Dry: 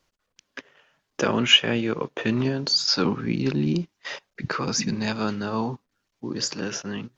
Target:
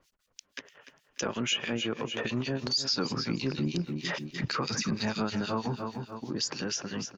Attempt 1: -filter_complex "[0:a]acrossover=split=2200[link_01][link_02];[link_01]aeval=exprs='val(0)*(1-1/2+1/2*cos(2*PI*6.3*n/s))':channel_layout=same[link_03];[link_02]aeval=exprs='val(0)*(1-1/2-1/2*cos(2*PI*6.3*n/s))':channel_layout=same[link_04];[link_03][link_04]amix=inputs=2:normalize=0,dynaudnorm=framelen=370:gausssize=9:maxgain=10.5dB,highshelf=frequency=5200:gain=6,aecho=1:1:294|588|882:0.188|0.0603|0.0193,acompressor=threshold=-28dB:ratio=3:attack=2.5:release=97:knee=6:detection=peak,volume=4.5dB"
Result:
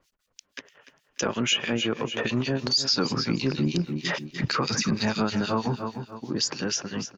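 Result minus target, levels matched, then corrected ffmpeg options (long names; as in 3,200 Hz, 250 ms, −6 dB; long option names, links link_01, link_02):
downward compressor: peak gain reduction −5.5 dB
-filter_complex "[0:a]acrossover=split=2200[link_01][link_02];[link_01]aeval=exprs='val(0)*(1-1/2+1/2*cos(2*PI*6.3*n/s))':channel_layout=same[link_03];[link_02]aeval=exprs='val(0)*(1-1/2-1/2*cos(2*PI*6.3*n/s))':channel_layout=same[link_04];[link_03][link_04]amix=inputs=2:normalize=0,dynaudnorm=framelen=370:gausssize=9:maxgain=10.5dB,highshelf=frequency=5200:gain=6,aecho=1:1:294|588|882:0.188|0.0603|0.0193,acompressor=threshold=-36dB:ratio=3:attack=2.5:release=97:knee=6:detection=peak,volume=4.5dB"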